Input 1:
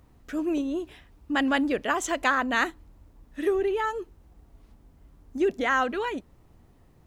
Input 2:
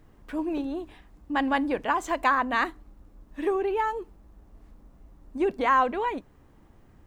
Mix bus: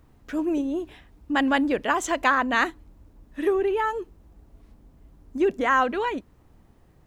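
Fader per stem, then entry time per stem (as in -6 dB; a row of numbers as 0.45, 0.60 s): -1.0, -6.0 dB; 0.00, 0.00 s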